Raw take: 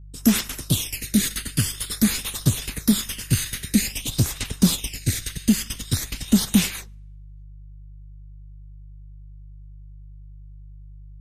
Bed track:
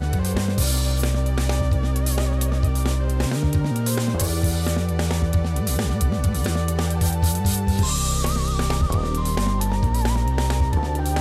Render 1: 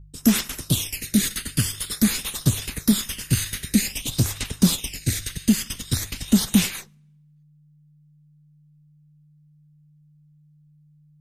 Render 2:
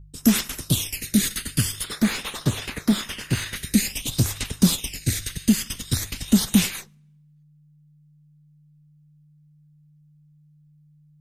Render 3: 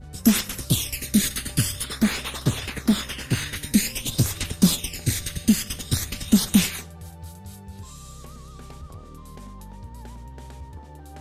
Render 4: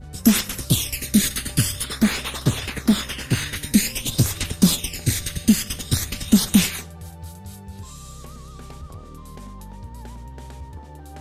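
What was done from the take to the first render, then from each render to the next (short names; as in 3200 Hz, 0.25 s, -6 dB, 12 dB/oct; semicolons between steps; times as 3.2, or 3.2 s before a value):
de-hum 50 Hz, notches 2
1.84–3.56 overdrive pedal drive 16 dB, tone 1100 Hz, clips at -6 dBFS
add bed track -20 dB
gain +2.5 dB; limiter -3 dBFS, peak gain reduction 1.5 dB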